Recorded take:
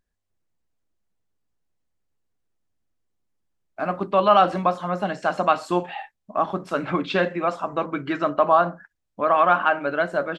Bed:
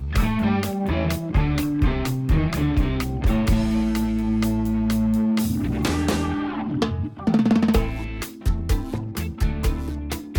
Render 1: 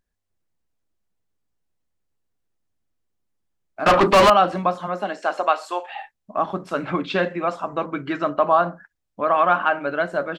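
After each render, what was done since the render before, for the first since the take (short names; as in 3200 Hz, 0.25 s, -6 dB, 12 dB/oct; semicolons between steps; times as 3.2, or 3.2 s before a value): 3.86–4.3 overdrive pedal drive 33 dB, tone 3600 Hz, clips at -6 dBFS; 4.86–5.93 HPF 190 Hz -> 590 Hz 24 dB/oct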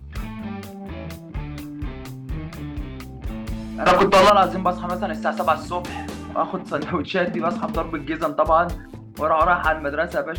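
add bed -10.5 dB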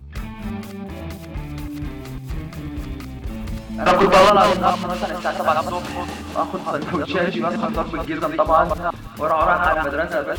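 reverse delay 0.168 s, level -3.5 dB; thin delay 0.268 s, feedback 80%, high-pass 2900 Hz, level -10 dB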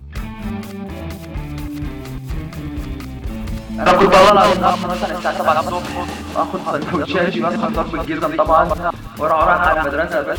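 gain +3.5 dB; limiter -1 dBFS, peak gain reduction 2 dB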